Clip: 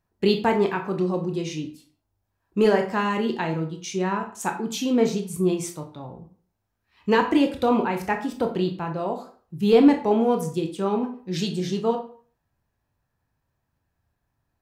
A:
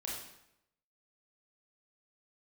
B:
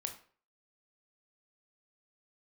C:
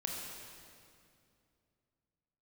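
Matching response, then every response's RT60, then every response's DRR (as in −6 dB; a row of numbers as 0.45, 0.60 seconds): B; 0.80, 0.45, 2.5 seconds; −4.5, 4.5, −1.0 decibels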